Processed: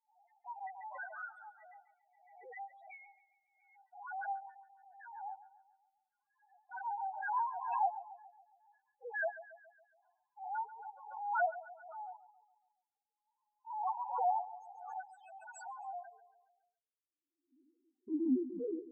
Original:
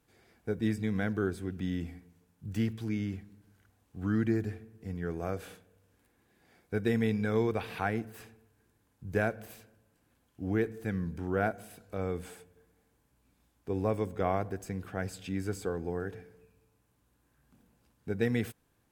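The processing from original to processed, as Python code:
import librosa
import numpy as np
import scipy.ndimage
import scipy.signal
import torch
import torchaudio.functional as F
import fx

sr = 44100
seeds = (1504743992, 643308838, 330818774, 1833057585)

y = fx.tape_stop_end(x, sr, length_s=1.05)
y = fx.low_shelf(y, sr, hz=460.0, db=-3.5)
y = fx.power_curve(y, sr, exponent=2.0)
y = fx.filter_sweep_highpass(y, sr, from_hz=860.0, to_hz=330.0, start_s=15.79, end_s=17.13, q=3.2)
y = fx.spec_topn(y, sr, count=1)
y = fx.echo_feedback(y, sr, ms=139, feedback_pct=51, wet_db=-15)
y = fx.pre_swell(y, sr, db_per_s=60.0)
y = y * 10.0 ** (12.5 / 20.0)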